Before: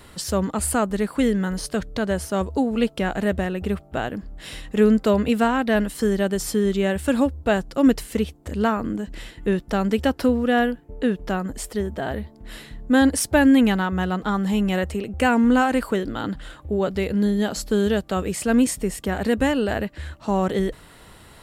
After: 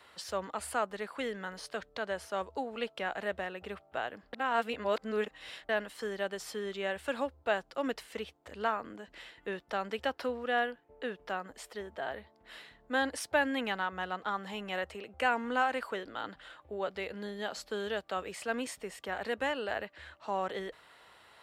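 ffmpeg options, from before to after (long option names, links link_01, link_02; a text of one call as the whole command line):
ffmpeg -i in.wav -filter_complex "[0:a]asplit=3[link_01][link_02][link_03];[link_01]atrim=end=4.332[link_04];[link_02]atrim=start=4.328:end=5.692,asetpts=PTS-STARTPTS,areverse[link_05];[link_03]atrim=start=5.688[link_06];[link_04][link_05]acrossfade=duration=0.004:curve1=hsin:curve2=hsin[link_07];[link_07][link_06]acrossfade=duration=0.004:curve1=hsin:curve2=hsin,highpass=56,acrossover=split=490 4800:gain=0.126 1 0.251[link_08][link_09][link_10];[link_08][link_09][link_10]amix=inputs=3:normalize=0,volume=-7dB" out.wav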